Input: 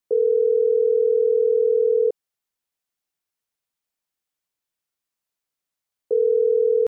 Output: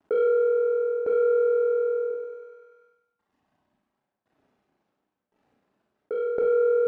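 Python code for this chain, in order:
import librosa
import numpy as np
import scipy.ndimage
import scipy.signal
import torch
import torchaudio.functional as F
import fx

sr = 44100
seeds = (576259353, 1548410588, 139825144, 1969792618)

y = scipy.ndimage.median_filter(x, 41, mode='constant')
y = fx.dereverb_blind(y, sr, rt60_s=1.3)
y = fx.peak_eq(y, sr, hz=500.0, db=-5.0, octaves=0.56)
y = fx.leveller(y, sr, passes=2)
y = fx.bandpass_q(y, sr, hz=460.0, q=0.51)
y = fx.tremolo_shape(y, sr, shape='saw_down', hz=0.94, depth_pct=95)
y = fx.echo_thinned(y, sr, ms=98, feedback_pct=53, hz=480.0, wet_db=-6.5)
y = fx.rev_schroeder(y, sr, rt60_s=0.31, comb_ms=29, drr_db=-1.0)
y = fx.env_flatten(y, sr, amount_pct=50)
y = y * 10.0 ** (-3.0 / 20.0)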